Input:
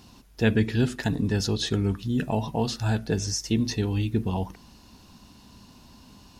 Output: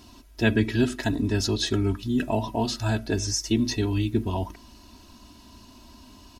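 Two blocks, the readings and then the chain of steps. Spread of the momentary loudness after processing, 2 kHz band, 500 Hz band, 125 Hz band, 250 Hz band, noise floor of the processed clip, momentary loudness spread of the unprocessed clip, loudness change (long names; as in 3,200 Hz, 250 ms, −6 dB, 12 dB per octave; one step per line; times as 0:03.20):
4 LU, +2.5 dB, +1.0 dB, −1.0 dB, +1.0 dB, −51 dBFS, 4 LU, +0.5 dB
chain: comb filter 3.1 ms, depth 76%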